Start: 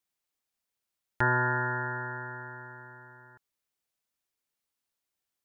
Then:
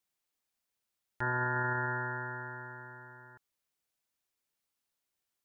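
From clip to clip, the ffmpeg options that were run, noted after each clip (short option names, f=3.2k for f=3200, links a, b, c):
-af "alimiter=limit=-24dB:level=0:latency=1:release=20"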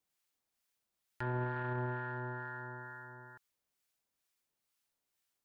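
-filter_complex "[0:a]acrossover=split=800[a][b];[b]acompressor=threshold=-43dB:ratio=10[c];[a][c]amix=inputs=2:normalize=0,asoftclip=type=tanh:threshold=-29dB,acrossover=split=1000[d][e];[d]aeval=exprs='val(0)*(1-0.5/2+0.5/2*cos(2*PI*2.2*n/s))':c=same[f];[e]aeval=exprs='val(0)*(1-0.5/2-0.5/2*cos(2*PI*2.2*n/s))':c=same[g];[f][g]amix=inputs=2:normalize=0,volume=3dB"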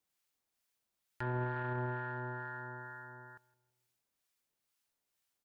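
-filter_complex "[0:a]asplit=2[a][b];[b]adelay=164,lowpass=f=870:p=1,volume=-19.5dB,asplit=2[c][d];[d]adelay=164,lowpass=f=870:p=1,volume=0.51,asplit=2[e][f];[f]adelay=164,lowpass=f=870:p=1,volume=0.51,asplit=2[g][h];[h]adelay=164,lowpass=f=870:p=1,volume=0.51[i];[a][c][e][g][i]amix=inputs=5:normalize=0"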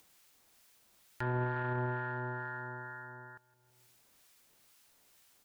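-af "acompressor=mode=upward:threshold=-54dB:ratio=2.5,volume=2.5dB"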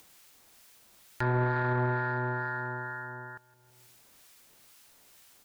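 -af "asoftclip=type=tanh:threshold=-27dB,volume=7.5dB"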